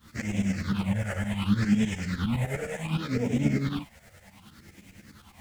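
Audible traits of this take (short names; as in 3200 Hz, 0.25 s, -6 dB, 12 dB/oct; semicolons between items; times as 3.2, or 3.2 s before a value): phasing stages 6, 0.67 Hz, lowest notch 270–1200 Hz; a quantiser's noise floor 10-bit, dither none; tremolo saw up 9.8 Hz, depth 85%; a shimmering, thickened sound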